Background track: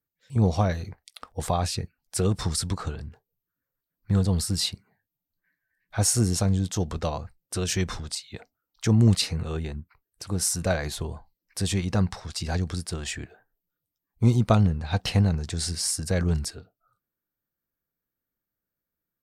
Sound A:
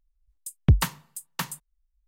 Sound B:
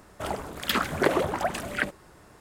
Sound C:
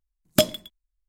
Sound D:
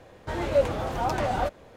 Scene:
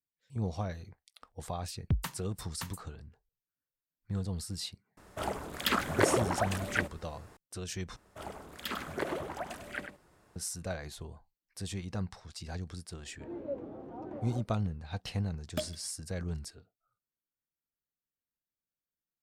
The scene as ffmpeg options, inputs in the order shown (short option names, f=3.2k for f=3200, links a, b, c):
-filter_complex "[2:a]asplit=2[a][b];[0:a]volume=-12.5dB[c];[b]asplit=2[d][e];[e]adelay=99.13,volume=-8dB,highshelf=f=4k:g=-2.23[f];[d][f]amix=inputs=2:normalize=0[g];[4:a]bandpass=f=300:t=q:w=2.2:csg=0[h];[3:a]bass=f=250:g=-2,treble=f=4k:g=-8[i];[c]asplit=2[j][k];[j]atrim=end=7.964[l];[g]atrim=end=2.4,asetpts=PTS-STARTPTS,volume=-12dB[m];[k]atrim=start=10.356[n];[1:a]atrim=end=2.07,asetpts=PTS-STARTPTS,volume=-12dB,afade=t=in:d=0.004:c=hsin,afade=t=out:st=2.066:d=0.004:c=hsin,adelay=1220[o];[a]atrim=end=2.4,asetpts=PTS-STARTPTS,volume=-3.5dB,afade=t=in:d=0.004:c=hsin,afade=t=out:st=2.396:d=0.004:c=hsin,adelay=219177S[p];[h]atrim=end=1.76,asetpts=PTS-STARTPTS,volume=-6.5dB,afade=t=in:d=0.004:c=hsin,afade=t=out:st=1.756:d=0.004:c=hsin,adelay=12930[q];[i]atrim=end=1.08,asetpts=PTS-STARTPTS,volume=-15.5dB,afade=t=in:d=0.004:c=hsin,afade=t=out:st=1.076:d=0.004:c=hsin,adelay=15190[r];[l][m]acrossfade=d=0.004:c1=hsin:c2=hsin[s];[s][n]acrossfade=d=0.004:c1=hsin:c2=hsin[t];[t][o][p][q][r]amix=inputs=5:normalize=0"